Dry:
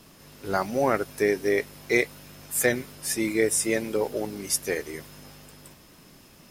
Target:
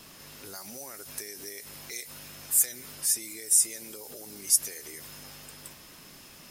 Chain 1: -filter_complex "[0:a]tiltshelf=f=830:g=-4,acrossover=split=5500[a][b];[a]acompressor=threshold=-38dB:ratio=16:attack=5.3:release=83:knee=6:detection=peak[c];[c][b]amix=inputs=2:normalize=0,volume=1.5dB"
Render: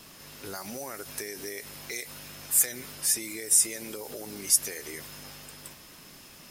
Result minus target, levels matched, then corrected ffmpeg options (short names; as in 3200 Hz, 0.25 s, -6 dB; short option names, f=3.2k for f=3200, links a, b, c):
compressor: peak gain reduction -7 dB
-filter_complex "[0:a]tiltshelf=f=830:g=-4,acrossover=split=5500[a][b];[a]acompressor=threshold=-45.5dB:ratio=16:attack=5.3:release=83:knee=6:detection=peak[c];[c][b]amix=inputs=2:normalize=0,volume=1.5dB"